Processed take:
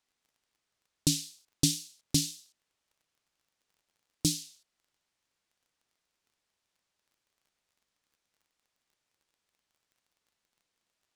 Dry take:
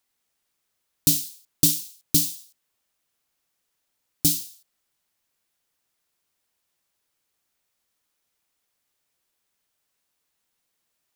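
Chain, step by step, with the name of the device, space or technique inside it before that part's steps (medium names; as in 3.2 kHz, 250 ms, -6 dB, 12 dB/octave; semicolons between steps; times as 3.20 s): lo-fi chain (low-pass 7 kHz 12 dB/octave; wow and flutter; crackle 26 per s -55 dBFS); trim -2.5 dB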